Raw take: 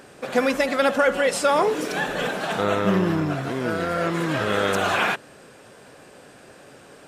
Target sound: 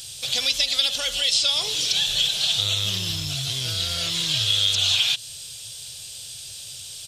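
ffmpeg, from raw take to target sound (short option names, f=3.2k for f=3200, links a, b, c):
-filter_complex "[0:a]acrossover=split=5300[a][b];[b]acompressor=threshold=-52dB:ratio=4:attack=1:release=60[c];[a][c]amix=inputs=2:normalize=0,firequalizer=gain_entry='entry(110,0);entry(210,-28);entry(660,-21);entry(1100,-22);entry(1700,-19);entry(3300,12)':delay=0.05:min_phase=1,acrossover=split=3200|8000[d][e][f];[d]acompressor=threshold=-37dB:ratio=4[g];[e]acompressor=threshold=-28dB:ratio=4[h];[f]acompressor=threshold=-49dB:ratio=4[i];[g][h][i]amix=inputs=3:normalize=0,volume=8.5dB"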